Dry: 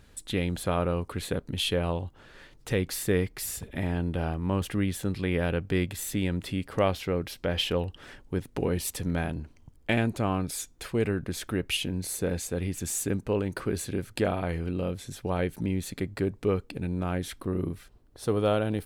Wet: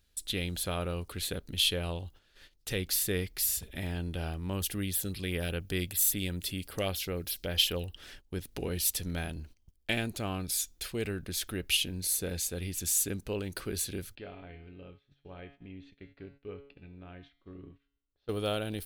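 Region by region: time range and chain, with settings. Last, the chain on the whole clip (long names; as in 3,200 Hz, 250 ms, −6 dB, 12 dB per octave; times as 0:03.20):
0:04.53–0:07.94: high-shelf EQ 6,700 Hz +6.5 dB + auto-filter notch sine 5.1 Hz 880–6,900 Hz
0:14.15–0:18.29: low-pass filter 3,000 Hz 24 dB per octave + tuned comb filter 140 Hz, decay 0.74 s, mix 80%
whole clip: high-shelf EQ 2,800 Hz +10 dB; noise gate −46 dBFS, range −13 dB; octave-band graphic EQ 125/250/500/1,000/2,000/8,000 Hz −8/−6/−5/−9/−5/−7 dB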